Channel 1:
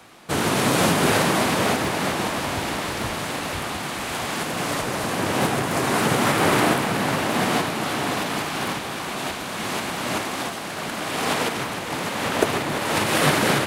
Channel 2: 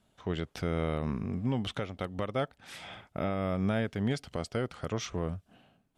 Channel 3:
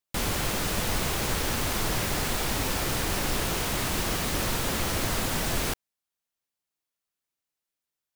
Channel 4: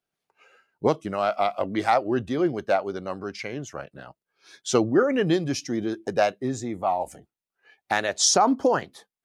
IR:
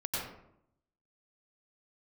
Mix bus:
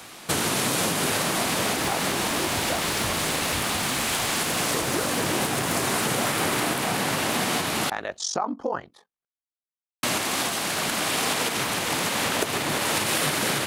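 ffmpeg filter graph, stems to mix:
-filter_complex "[0:a]volume=2dB,asplit=3[a][b][c];[a]atrim=end=7.9,asetpts=PTS-STARTPTS,afade=t=out:st=7.896:d=0.004:c=hsin[d];[b]atrim=start=7.9:end=10.03,asetpts=PTS-STARTPTS,volume=0[e];[c]atrim=start=10.03,asetpts=PTS-STARTPTS,afade=t=in:d=0.004:c=hsin[f];[d][e][f]concat=n=3:v=0:a=1[g];[1:a]adelay=2450,volume=-5dB[h];[2:a]adelay=900,volume=-18dB[i];[3:a]lowpass=f=1.4k:p=1,equalizer=f=1.1k:t=o:w=0.77:g=6,aeval=exprs='val(0)*sin(2*PI*23*n/s)':c=same,volume=-2dB[j];[g][h][i][j]amix=inputs=4:normalize=0,highshelf=f=2.9k:g=9.5,acompressor=threshold=-22dB:ratio=6"

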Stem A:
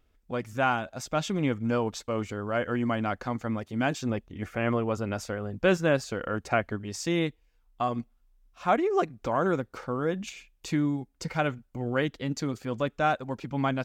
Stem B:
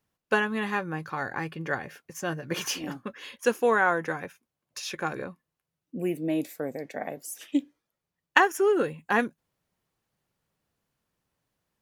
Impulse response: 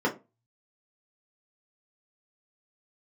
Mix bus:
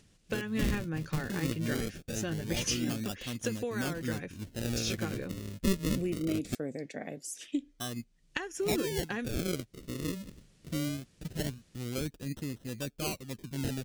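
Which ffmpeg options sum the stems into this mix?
-filter_complex "[0:a]acrusher=samples=38:mix=1:aa=0.000001:lfo=1:lforange=38:lforate=0.22,volume=-4dB,asplit=3[a][b][c];[a]atrim=end=6.55,asetpts=PTS-STARTPTS,afade=t=out:st=6.546:d=0.004:c=hsin[d];[b]atrim=start=6.55:end=7.55,asetpts=PTS-STARTPTS,volume=0[e];[c]atrim=start=7.55,asetpts=PTS-STARTPTS,afade=t=in:d=0.004:c=hsin[f];[d][e][f]concat=n=3:v=0:a=1[g];[1:a]acompressor=threshold=-27dB:ratio=10,lowpass=f=9.1k:w=0.5412,lowpass=f=9.1k:w=1.3066,acompressor=mode=upward:threshold=-49dB:ratio=2.5,volume=2.5dB[h];[g][h]amix=inputs=2:normalize=0,equalizer=f=960:t=o:w=1.8:g=-15"

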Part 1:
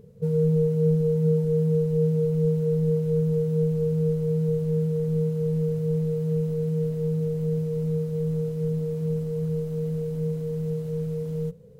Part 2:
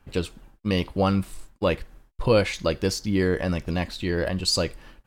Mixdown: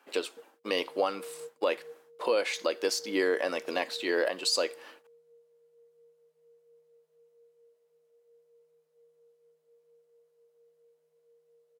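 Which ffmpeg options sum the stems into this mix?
-filter_complex "[0:a]flanger=delay=9.7:depth=6.6:regen=-49:speed=0.21:shape=triangular,adelay=150,volume=-10dB,asplit=2[a][b];[b]volume=-16dB[c];[1:a]equalizer=f=260:w=1.6:g=9,volume=1.5dB,asplit=2[d][e];[e]apad=whole_len=526727[f];[a][f]sidechaingate=range=-33dB:threshold=-37dB:ratio=16:detection=peak[g];[c]aecho=0:1:675:1[h];[g][d][h]amix=inputs=3:normalize=0,highpass=f=450:w=0.5412,highpass=f=450:w=1.3066,alimiter=limit=-16.5dB:level=0:latency=1:release=302"

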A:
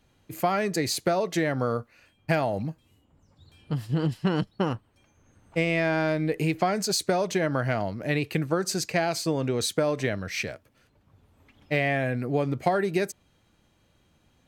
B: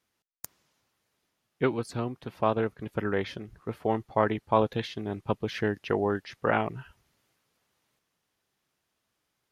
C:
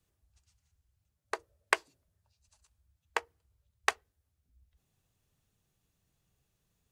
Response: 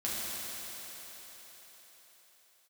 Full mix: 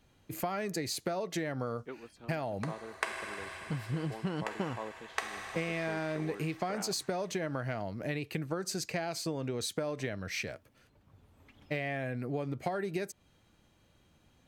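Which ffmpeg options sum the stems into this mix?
-filter_complex "[0:a]volume=-1.5dB[a];[1:a]highpass=200,adelay=250,volume=-18dB[b];[2:a]adelay=1300,volume=-7dB,asplit=2[c][d];[d]volume=-5dB[e];[a][c]amix=inputs=2:normalize=0,acompressor=threshold=-35dB:ratio=2.5,volume=0dB[f];[3:a]atrim=start_sample=2205[g];[e][g]afir=irnorm=-1:irlink=0[h];[b][f][h]amix=inputs=3:normalize=0"

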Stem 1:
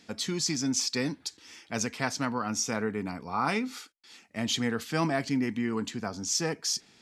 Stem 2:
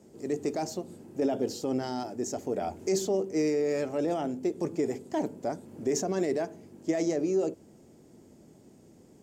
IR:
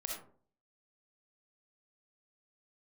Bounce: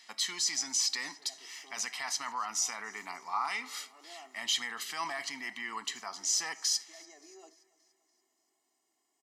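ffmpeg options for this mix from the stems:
-filter_complex "[0:a]alimiter=limit=-22.5dB:level=0:latency=1:release=11,volume=0.5dB,asplit=4[a][b][c][d];[b]volume=-15.5dB[e];[c]volume=-24dB[f];[1:a]aecho=1:1:2.8:0.8,volume=-13.5dB,asplit=2[g][h];[h]volume=-22dB[i];[d]apad=whole_len=406916[j];[g][j]sidechaincompress=threshold=-38dB:ratio=8:attack=25:release=690[k];[2:a]atrim=start_sample=2205[l];[e][l]afir=irnorm=-1:irlink=0[m];[f][i]amix=inputs=2:normalize=0,aecho=0:1:288|576|864|1152|1440|1728|2016:1|0.51|0.26|0.133|0.0677|0.0345|0.0176[n];[a][k][m][n]amix=inputs=4:normalize=0,highpass=1k,aecho=1:1:1:0.61"

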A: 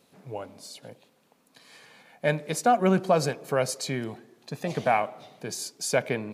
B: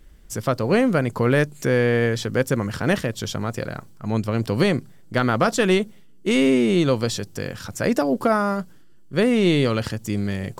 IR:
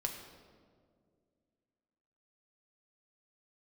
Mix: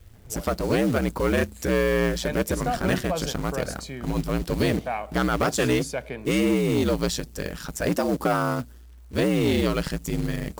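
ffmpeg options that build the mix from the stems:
-filter_complex "[0:a]volume=-6dB[a];[1:a]highshelf=f=11k:g=5.5,aeval=exprs='val(0)*sin(2*PI*60*n/s)':c=same,acrusher=bits=4:mode=log:mix=0:aa=0.000001,volume=1.5dB[b];[a][b]amix=inputs=2:normalize=0,asoftclip=type=tanh:threshold=-14dB"

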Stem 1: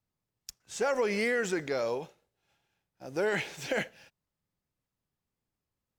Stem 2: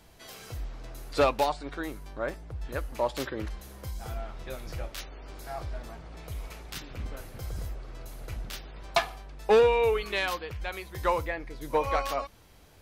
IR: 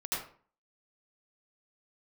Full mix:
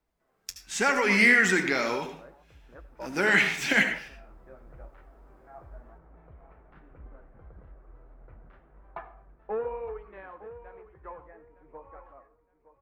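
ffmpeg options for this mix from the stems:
-filter_complex "[0:a]equalizer=f=125:t=o:w=1:g=-5,equalizer=f=250:t=o:w=1:g=6,equalizer=f=500:t=o:w=1:g=-11,equalizer=f=2k:t=o:w=1:g=7,dynaudnorm=f=150:g=5:m=7dB,volume=2.5dB,asplit=3[a][b][c];[b]volume=-9dB[d];[1:a]lowpass=f=1.6k:w=0.5412,lowpass=f=1.6k:w=1.3066,dynaudnorm=f=380:g=13:m=14.5dB,volume=-19.5dB,asplit=3[e][f][g];[f]volume=-18dB[h];[g]volume=-13.5dB[i];[c]apad=whole_len=565328[j];[e][j]sidechaincompress=threshold=-30dB:ratio=8:attack=16:release=513[k];[2:a]atrim=start_sample=2205[l];[d][h]amix=inputs=2:normalize=0[m];[m][l]afir=irnorm=-1:irlink=0[n];[i]aecho=0:1:913|1826|2739|3652:1|0.24|0.0576|0.0138[o];[a][k][n][o]amix=inputs=4:normalize=0,equalizer=f=100:t=o:w=0.5:g=-10,flanger=delay=2.1:depth=8.9:regen=-56:speed=1:shape=sinusoidal"

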